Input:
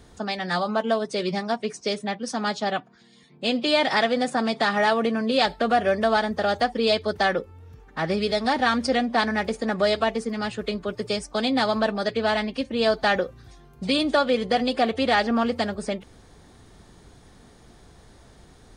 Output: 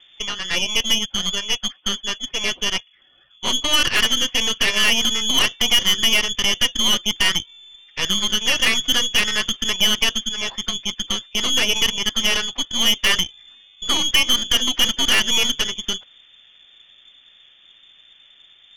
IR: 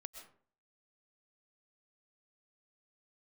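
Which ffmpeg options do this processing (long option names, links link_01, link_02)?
-af "lowpass=frequency=3100:width_type=q:width=0.5098,lowpass=frequency=3100:width_type=q:width=0.6013,lowpass=frequency=3100:width_type=q:width=0.9,lowpass=frequency=3100:width_type=q:width=2.563,afreqshift=-3600,aeval=exprs='0.355*(cos(1*acos(clip(val(0)/0.355,-1,1)))-cos(1*PI/2))+0.0631*(cos(6*acos(clip(val(0)/0.355,-1,1)))-cos(6*PI/2))+0.0141*(cos(7*acos(clip(val(0)/0.355,-1,1)))-cos(7*PI/2))':channel_layout=same,volume=3dB"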